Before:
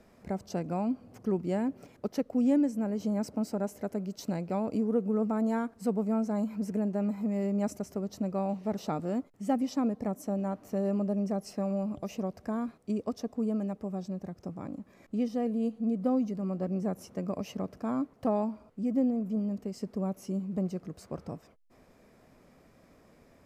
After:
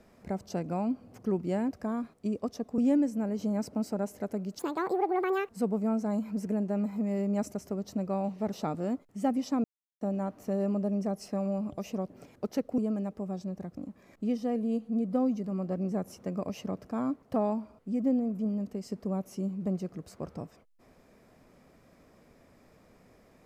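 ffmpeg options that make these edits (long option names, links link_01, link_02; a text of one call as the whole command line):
ffmpeg -i in.wav -filter_complex "[0:a]asplit=10[link_01][link_02][link_03][link_04][link_05][link_06][link_07][link_08][link_09][link_10];[link_01]atrim=end=1.712[link_11];[link_02]atrim=start=12.348:end=13.422[link_12];[link_03]atrim=start=2.388:end=4.204[link_13];[link_04]atrim=start=4.2:end=5.74,asetpts=PTS-STARTPTS,asetrate=75411,aresample=44100[link_14];[link_05]atrim=start=5.736:end=9.89,asetpts=PTS-STARTPTS,afade=type=out:start_time=4.15:duration=0.004:curve=hsin[link_15];[link_06]atrim=start=9.89:end=10.26,asetpts=PTS-STARTPTS,volume=0[link_16];[link_07]atrim=start=10.26:end=12.352,asetpts=PTS-STARTPTS,afade=type=in:duration=0.004:curve=hsin[link_17];[link_08]atrim=start=1.708:end=2.392[link_18];[link_09]atrim=start=13.418:end=14.412[link_19];[link_10]atrim=start=14.678[link_20];[link_11][link_12]acrossfade=duration=0.004:curve1=hsin:curve2=hsin[link_21];[link_21][link_13]acrossfade=duration=0.004:curve1=hsin:curve2=hsin[link_22];[link_22][link_14]acrossfade=duration=0.004:curve1=hsin:curve2=hsin[link_23];[link_15][link_16][link_17]concat=n=3:v=0:a=1[link_24];[link_23][link_24]acrossfade=duration=0.004:curve1=hsin:curve2=hsin[link_25];[link_25][link_18]acrossfade=duration=0.004:curve1=hsin:curve2=hsin[link_26];[link_26][link_19]acrossfade=duration=0.004:curve1=hsin:curve2=hsin[link_27];[link_27][link_20]acrossfade=duration=0.004:curve1=hsin:curve2=hsin" out.wav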